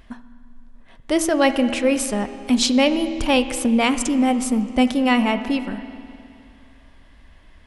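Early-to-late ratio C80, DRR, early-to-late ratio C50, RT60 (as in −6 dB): 12.0 dB, 10.0 dB, 11.0 dB, 2.5 s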